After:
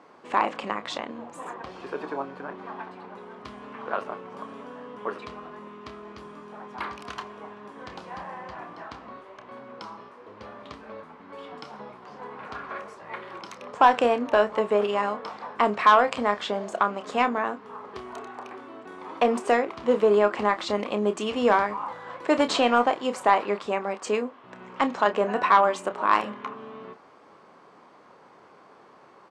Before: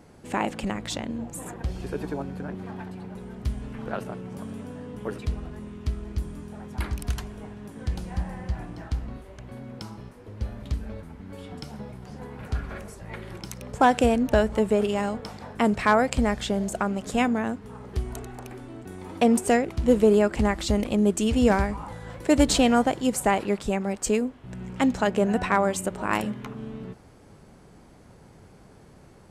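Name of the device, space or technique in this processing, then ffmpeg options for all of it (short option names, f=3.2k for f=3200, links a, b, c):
intercom: -filter_complex "[0:a]highpass=390,lowpass=3.9k,equalizer=f=1.1k:t=o:w=0.44:g=10.5,asoftclip=type=tanh:threshold=-8dB,asplit=2[a][b];[b]adelay=29,volume=-10.5dB[c];[a][c]amix=inputs=2:normalize=0,volume=1.5dB"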